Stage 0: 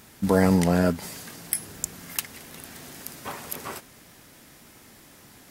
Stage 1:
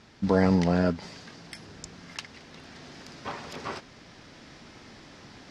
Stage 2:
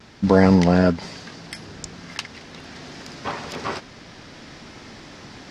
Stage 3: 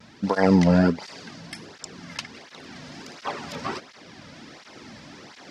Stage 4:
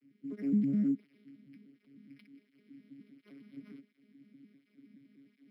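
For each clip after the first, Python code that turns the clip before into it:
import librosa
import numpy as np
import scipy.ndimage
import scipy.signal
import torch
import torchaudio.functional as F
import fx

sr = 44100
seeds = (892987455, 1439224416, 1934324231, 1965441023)

y1 = scipy.signal.sosfilt(scipy.signal.cheby1(3, 1.0, 5200.0, 'lowpass', fs=sr, output='sos'), x)
y1 = fx.rider(y1, sr, range_db=4, speed_s=2.0)
y2 = fx.vibrato(y1, sr, rate_hz=0.43, depth_cents=17.0)
y2 = y2 * 10.0 ** (7.5 / 20.0)
y3 = fx.flanger_cancel(y2, sr, hz=1.4, depth_ms=2.9)
y4 = fx.vocoder_arp(y3, sr, chord='bare fifth', root=49, every_ms=103)
y4 = fx.vowel_filter(y4, sr, vowel='i')
y4 = np.interp(np.arange(len(y4)), np.arange(len(y4))[::6], y4[::6])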